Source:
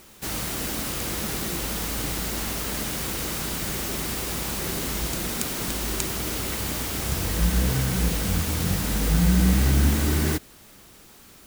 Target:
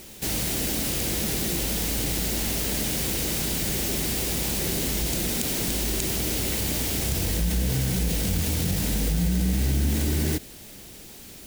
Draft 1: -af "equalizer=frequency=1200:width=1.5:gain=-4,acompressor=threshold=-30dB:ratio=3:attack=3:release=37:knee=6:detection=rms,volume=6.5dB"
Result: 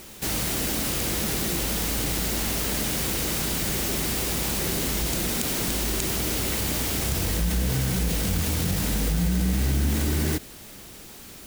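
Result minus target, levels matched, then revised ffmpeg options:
1,000 Hz band +3.5 dB
-af "equalizer=frequency=1200:width=1.5:gain=-10.5,acompressor=threshold=-30dB:ratio=3:attack=3:release=37:knee=6:detection=rms,volume=6.5dB"

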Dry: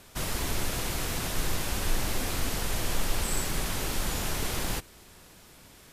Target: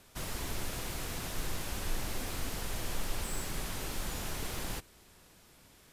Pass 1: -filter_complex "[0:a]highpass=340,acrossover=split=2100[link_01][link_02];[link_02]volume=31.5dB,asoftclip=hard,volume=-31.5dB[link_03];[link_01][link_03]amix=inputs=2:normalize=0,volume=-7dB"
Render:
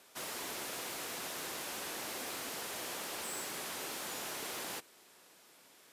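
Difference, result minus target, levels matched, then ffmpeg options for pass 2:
250 Hz band −5.0 dB
-filter_complex "[0:a]acrossover=split=2100[link_01][link_02];[link_02]volume=31.5dB,asoftclip=hard,volume=-31.5dB[link_03];[link_01][link_03]amix=inputs=2:normalize=0,volume=-7dB"

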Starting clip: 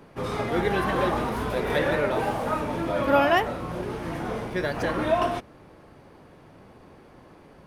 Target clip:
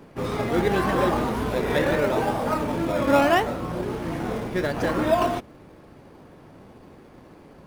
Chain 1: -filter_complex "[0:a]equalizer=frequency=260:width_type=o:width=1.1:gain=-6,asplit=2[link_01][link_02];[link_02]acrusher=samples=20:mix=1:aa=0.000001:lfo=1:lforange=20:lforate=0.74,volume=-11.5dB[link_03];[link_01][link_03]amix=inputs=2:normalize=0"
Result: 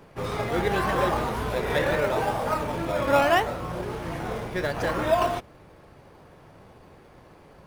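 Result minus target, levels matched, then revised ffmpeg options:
250 Hz band −4.5 dB
-filter_complex "[0:a]equalizer=frequency=260:width_type=o:width=1.1:gain=2.5,asplit=2[link_01][link_02];[link_02]acrusher=samples=20:mix=1:aa=0.000001:lfo=1:lforange=20:lforate=0.74,volume=-11.5dB[link_03];[link_01][link_03]amix=inputs=2:normalize=0"

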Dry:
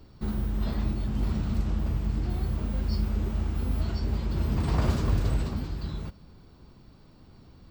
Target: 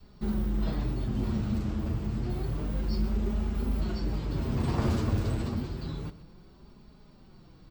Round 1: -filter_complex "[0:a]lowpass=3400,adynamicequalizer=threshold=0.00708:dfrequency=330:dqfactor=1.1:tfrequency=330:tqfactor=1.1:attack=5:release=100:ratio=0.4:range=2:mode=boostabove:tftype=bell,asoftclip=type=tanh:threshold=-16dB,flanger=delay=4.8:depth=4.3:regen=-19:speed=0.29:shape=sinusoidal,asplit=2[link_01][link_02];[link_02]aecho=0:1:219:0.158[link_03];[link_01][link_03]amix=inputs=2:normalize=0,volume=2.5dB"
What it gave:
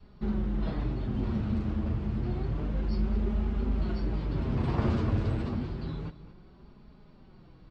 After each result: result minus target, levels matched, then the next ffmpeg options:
echo 96 ms late; 4,000 Hz band −4.5 dB
-filter_complex "[0:a]lowpass=3400,adynamicequalizer=threshold=0.00708:dfrequency=330:dqfactor=1.1:tfrequency=330:tqfactor=1.1:attack=5:release=100:ratio=0.4:range=2:mode=boostabove:tftype=bell,asoftclip=type=tanh:threshold=-16dB,flanger=delay=4.8:depth=4.3:regen=-19:speed=0.29:shape=sinusoidal,asplit=2[link_01][link_02];[link_02]aecho=0:1:123:0.158[link_03];[link_01][link_03]amix=inputs=2:normalize=0,volume=2.5dB"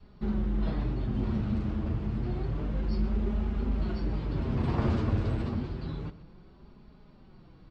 4,000 Hz band −4.5 dB
-filter_complex "[0:a]adynamicequalizer=threshold=0.00708:dfrequency=330:dqfactor=1.1:tfrequency=330:tqfactor=1.1:attack=5:release=100:ratio=0.4:range=2:mode=boostabove:tftype=bell,asoftclip=type=tanh:threshold=-16dB,flanger=delay=4.8:depth=4.3:regen=-19:speed=0.29:shape=sinusoidal,asplit=2[link_01][link_02];[link_02]aecho=0:1:123:0.158[link_03];[link_01][link_03]amix=inputs=2:normalize=0,volume=2.5dB"

